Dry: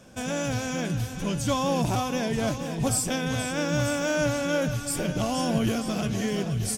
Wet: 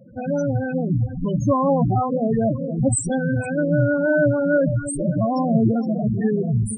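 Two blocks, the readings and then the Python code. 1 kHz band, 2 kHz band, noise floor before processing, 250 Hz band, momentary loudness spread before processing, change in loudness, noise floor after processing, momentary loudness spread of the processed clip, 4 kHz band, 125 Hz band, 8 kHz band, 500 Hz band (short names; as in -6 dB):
+5.0 dB, +3.0 dB, -35 dBFS, +7.0 dB, 4 LU, +6.0 dB, -29 dBFS, 5 LU, under -20 dB, +7.5 dB, -0.5 dB, +7.5 dB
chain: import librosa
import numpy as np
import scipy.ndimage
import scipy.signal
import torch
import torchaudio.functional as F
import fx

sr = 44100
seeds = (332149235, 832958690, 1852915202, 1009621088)

y = fx.hum_notches(x, sr, base_hz=50, count=5)
y = fx.spec_topn(y, sr, count=8)
y = y * 10.0 ** (8.5 / 20.0)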